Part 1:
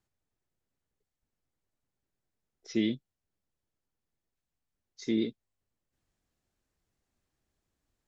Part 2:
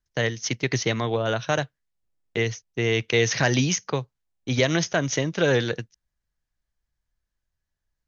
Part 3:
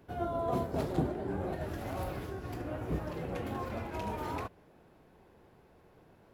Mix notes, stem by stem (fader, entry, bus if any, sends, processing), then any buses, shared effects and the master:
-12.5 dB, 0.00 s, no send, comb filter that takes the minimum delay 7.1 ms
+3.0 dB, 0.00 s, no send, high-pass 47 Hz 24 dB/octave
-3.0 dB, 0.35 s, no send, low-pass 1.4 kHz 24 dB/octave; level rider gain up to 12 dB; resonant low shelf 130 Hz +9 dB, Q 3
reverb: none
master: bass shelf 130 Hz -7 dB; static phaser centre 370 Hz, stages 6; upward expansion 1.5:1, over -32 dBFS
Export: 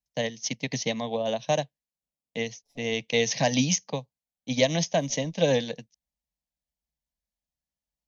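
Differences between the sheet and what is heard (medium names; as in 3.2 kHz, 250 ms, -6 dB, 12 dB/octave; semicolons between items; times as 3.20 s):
stem 3: muted; master: missing bass shelf 130 Hz -7 dB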